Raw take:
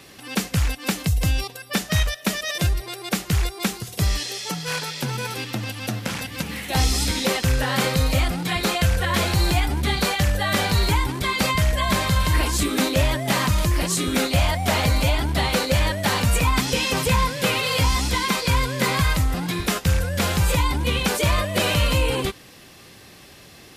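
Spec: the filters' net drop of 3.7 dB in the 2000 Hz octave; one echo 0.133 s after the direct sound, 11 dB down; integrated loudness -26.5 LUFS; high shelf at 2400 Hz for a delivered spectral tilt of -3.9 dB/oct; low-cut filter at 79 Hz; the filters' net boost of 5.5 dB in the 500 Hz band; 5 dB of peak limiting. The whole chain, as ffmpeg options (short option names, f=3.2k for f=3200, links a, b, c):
-af "highpass=79,equalizer=f=500:t=o:g=6.5,equalizer=f=2k:t=o:g=-8,highshelf=f=2.4k:g=5.5,alimiter=limit=-10.5dB:level=0:latency=1,aecho=1:1:133:0.282,volume=-5dB"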